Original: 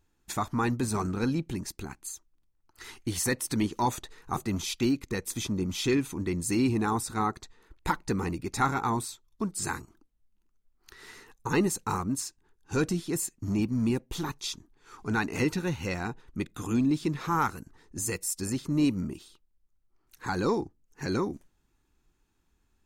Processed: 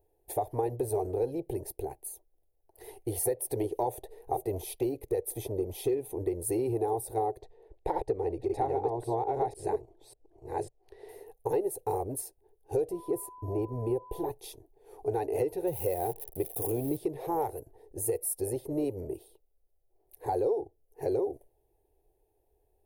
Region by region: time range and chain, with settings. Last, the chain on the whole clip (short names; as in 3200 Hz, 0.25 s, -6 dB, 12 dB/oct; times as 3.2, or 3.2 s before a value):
7.39–11.09 reverse delay 0.549 s, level -0.5 dB + LPF 5100 Hz
12.91–14.3 high shelf 2200 Hz -7.5 dB + whine 1000 Hz -38 dBFS
15.67–16.97 switching spikes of -28.5 dBFS + bell 160 Hz +7 dB 0.38 oct + mismatched tape noise reduction decoder only
whole clip: EQ curve 120 Hz 0 dB, 210 Hz -21 dB, 420 Hz +15 dB, 760 Hz +12 dB, 1300 Hz -24 dB, 1800 Hz -11 dB, 3700 Hz -12 dB, 7200 Hz -16 dB, 10000 Hz +7 dB; compressor 6:1, threshold -24 dBFS; gain -2 dB